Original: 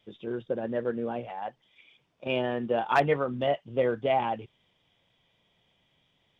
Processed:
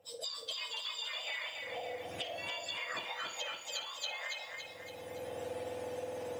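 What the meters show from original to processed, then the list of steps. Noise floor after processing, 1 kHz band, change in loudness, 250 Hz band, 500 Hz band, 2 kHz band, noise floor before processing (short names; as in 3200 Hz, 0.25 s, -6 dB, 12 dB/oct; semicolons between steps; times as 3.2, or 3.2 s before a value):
-49 dBFS, -14.0 dB, -10.0 dB, -20.0 dB, -13.5 dB, -3.5 dB, -71 dBFS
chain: spectrum mirrored in octaves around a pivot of 1300 Hz; recorder AGC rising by 26 dB/s; treble ducked by the level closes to 1500 Hz, closed at -25 dBFS; dynamic EQ 4500 Hz, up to +7 dB, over -50 dBFS, Q 0.92; notch 4300 Hz, Q 9.7; on a send: flutter echo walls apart 9 m, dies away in 0.31 s; on the sum: compressor 5:1, threshold -42 dBFS, peak gain reduction 16 dB; lo-fi delay 0.282 s, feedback 55%, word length 11-bit, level -4 dB; gain +2 dB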